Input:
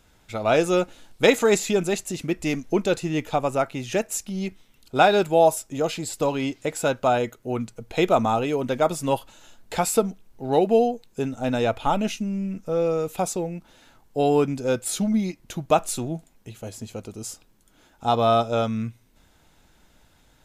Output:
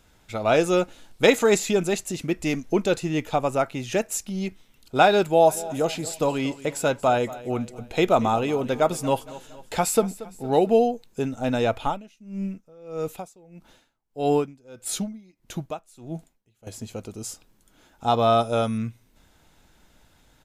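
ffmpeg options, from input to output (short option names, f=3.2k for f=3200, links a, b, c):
-filter_complex "[0:a]asplit=3[a][b][c];[a]afade=t=out:st=5.48:d=0.02[d];[b]aecho=1:1:231|462|693|924:0.133|0.064|0.0307|0.0147,afade=t=in:st=5.48:d=0.02,afade=t=out:st=10.72:d=0.02[e];[c]afade=t=in:st=10.72:d=0.02[f];[d][e][f]amix=inputs=3:normalize=0,asettb=1/sr,asplit=3[g][h][i];[g]atrim=end=11.824[j];[h]atrim=start=11.82:end=16.67,asetpts=PTS-STARTPTS,afade=t=in:d=0.004:c=qsin,afade=t=out:st=4.846:d=0.004:c=qsin,aeval=exprs='val(0)*pow(10,-26*(0.5-0.5*cos(2*PI*1.6*n/s))/20)':c=same[k];[i]atrim=start=16.666[l];[j][k]acrossfade=d=0.004:c1=hsin:c2=qsin[m];[m][l]acrossfade=d=0.004:c1=qsin:c2=hsin,asettb=1/sr,asplit=3[n][o][p];[n]atrim=end=18.384[q];[o]atrim=start=18.38:end=18.78,asetpts=PTS-STARTPTS,afade=t=in:d=0.004:c=qsin,afade=t=out:st=0.396:d=0.004:c=qsin,aeval=exprs='val(0)+0.00282*sin(2*PI*9700*n/s)':c=same[r];[p]atrim=start=18.776[s];[q][r]acrossfade=d=0.004:c1=hsin:c2=qsin[t];[t][s]acrossfade=d=0.004:c1=qsin:c2=hsin"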